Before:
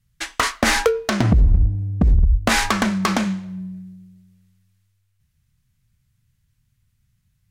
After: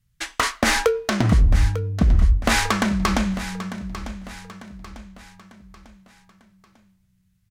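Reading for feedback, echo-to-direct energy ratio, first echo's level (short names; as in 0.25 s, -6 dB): 43%, -12.0 dB, -13.0 dB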